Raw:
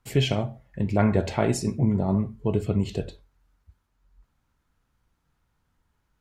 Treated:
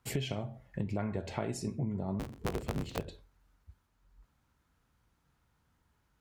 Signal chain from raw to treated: 2.19–3.07 cycle switcher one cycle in 3, inverted; HPF 46 Hz; compressor 6:1, threshold -32 dBFS, peak gain reduction 15.5 dB

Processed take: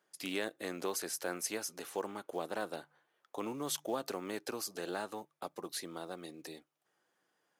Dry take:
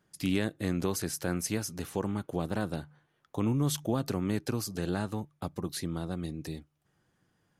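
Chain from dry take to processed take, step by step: Chebyshev high-pass 500 Hz, order 2; in parallel at -6 dB: short-mantissa float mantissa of 2-bit; on the sum: gain -5 dB

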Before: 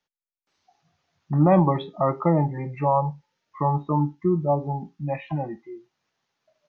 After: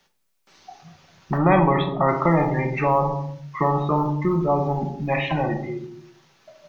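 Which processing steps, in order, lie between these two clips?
1.37–2.07 LPF 2700 Hz -> 1800 Hz 12 dB/oct; shoebox room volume 530 m³, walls furnished, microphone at 1.1 m; spectral compressor 2:1; gain -2 dB

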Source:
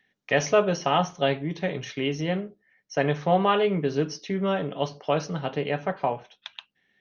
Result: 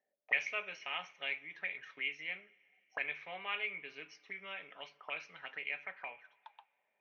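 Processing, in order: auto-wah 590–2300 Hz, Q 11, up, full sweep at -24.5 dBFS; two-slope reverb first 0.22 s, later 3 s, from -18 dB, DRR 17.5 dB; gain +5.5 dB

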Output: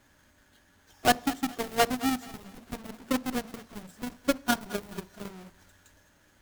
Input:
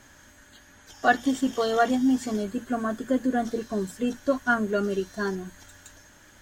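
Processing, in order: half-waves squared off; added harmonics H 7 -14 dB, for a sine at -7.5 dBFS; thinning echo 0.215 s, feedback 35%, level -16.5 dB; on a send at -19 dB: reverb RT60 0.55 s, pre-delay 3 ms; on the sum: gain -6 dB

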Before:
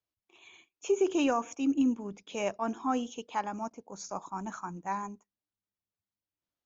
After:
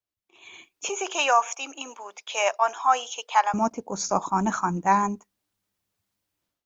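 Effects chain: AGC gain up to 16 dB; 0.89–3.54 HPF 680 Hz 24 dB/oct; gain -2 dB

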